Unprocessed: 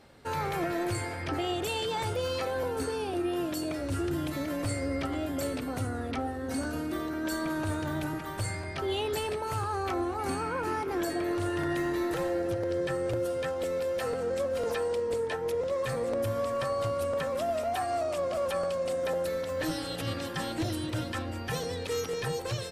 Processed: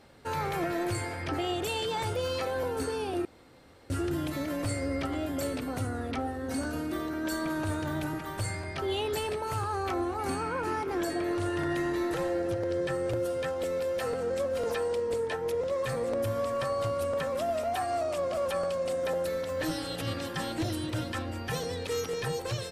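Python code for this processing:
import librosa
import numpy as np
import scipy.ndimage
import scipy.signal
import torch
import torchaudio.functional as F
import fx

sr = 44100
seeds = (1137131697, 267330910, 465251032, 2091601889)

y = fx.lowpass(x, sr, hz=12000.0, slope=12, at=(10.36, 12.93))
y = fx.edit(y, sr, fx.room_tone_fill(start_s=3.25, length_s=0.65), tone=tone)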